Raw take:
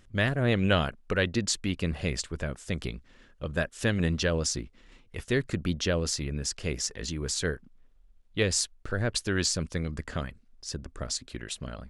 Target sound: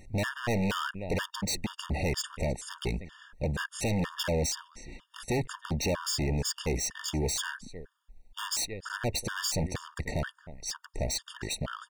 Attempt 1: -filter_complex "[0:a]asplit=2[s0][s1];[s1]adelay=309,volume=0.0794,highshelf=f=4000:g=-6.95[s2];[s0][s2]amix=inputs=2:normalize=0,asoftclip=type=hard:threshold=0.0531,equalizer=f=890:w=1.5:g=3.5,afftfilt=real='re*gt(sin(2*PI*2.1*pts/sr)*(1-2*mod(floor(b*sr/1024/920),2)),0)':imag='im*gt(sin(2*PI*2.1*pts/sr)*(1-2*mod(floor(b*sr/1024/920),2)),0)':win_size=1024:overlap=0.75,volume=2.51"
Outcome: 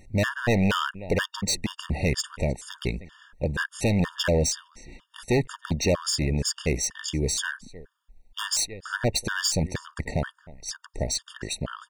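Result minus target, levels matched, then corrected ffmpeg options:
hard clipper: distortion -5 dB
-filter_complex "[0:a]asplit=2[s0][s1];[s1]adelay=309,volume=0.0794,highshelf=f=4000:g=-6.95[s2];[s0][s2]amix=inputs=2:normalize=0,asoftclip=type=hard:threshold=0.02,equalizer=f=890:w=1.5:g=3.5,afftfilt=real='re*gt(sin(2*PI*2.1*pts/sr)*(1-2*mod(floor(b*sr/1024/920),2)),0)':imag='im*gt(sin(2*PI*2.1*pts/sr)*(1-2*mod(floor(b*sr/1024/920),2)),0)':win_size=1024:overlap=0.75,volume=2.51"

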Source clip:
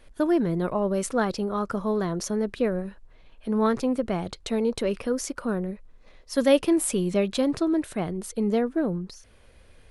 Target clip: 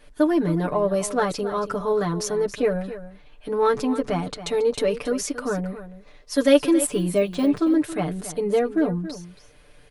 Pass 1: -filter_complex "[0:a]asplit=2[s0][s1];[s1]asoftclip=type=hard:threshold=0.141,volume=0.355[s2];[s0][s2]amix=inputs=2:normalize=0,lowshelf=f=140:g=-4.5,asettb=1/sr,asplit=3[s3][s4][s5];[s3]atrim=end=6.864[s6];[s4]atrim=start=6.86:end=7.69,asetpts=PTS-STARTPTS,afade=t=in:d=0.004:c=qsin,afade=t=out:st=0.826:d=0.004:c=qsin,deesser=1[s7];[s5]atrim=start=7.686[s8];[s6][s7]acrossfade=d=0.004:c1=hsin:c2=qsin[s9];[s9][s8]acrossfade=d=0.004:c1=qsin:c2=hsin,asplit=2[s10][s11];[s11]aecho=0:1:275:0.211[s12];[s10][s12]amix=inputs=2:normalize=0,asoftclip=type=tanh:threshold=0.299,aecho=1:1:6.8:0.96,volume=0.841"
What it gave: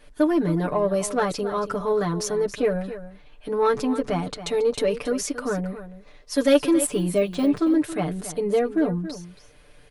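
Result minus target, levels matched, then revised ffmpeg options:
saturation: distortion +17 dB
-filter_complex "[0:a]asplit=2[s0][s1];[s1]asoftclip=type=hard:threshold=0.141,volume=0.355[s2];[s0][s2]amix=inputs=2:normalize=0,lowshelf=f=140:g=-4.5,asettb=1/sr,asplit=3[s3][s4][s5];[s3]atrim=end=6.864[s6];[s4]atrim=start=6.86:end=7.69,asetpts=PTS-STARTPTS,afade=t=in:d=0.004:c=qsin,afade=t=out:st=0.826:d=0.004:c=qsin,deesser=1[s7];[s5]atrim=start=7.686[s8];[s6][s7]acrossfade=d=0.004:c1=hsin:c2=qsin[s9];[s9][s8]acrossfade=d=0.004:c1=qsin:c2=hsin,asplit=2[s10][s11];[s11]aecho=0:1:275:0.211[s12];[s10][s12]amix=inputs=2:normalize=0,asoftclip=type=tanh:threshold=0.891,aecho=1:1:6.8:0.96,volume=0.841"

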